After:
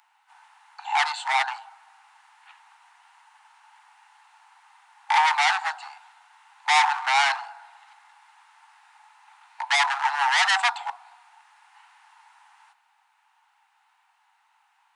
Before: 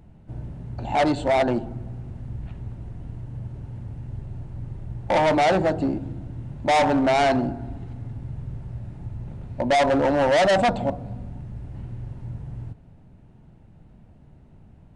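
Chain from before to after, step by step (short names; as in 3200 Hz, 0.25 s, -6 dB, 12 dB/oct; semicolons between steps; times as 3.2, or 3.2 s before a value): steep high-pass 810 Hz 96 dB/oct; gain +5.5 dB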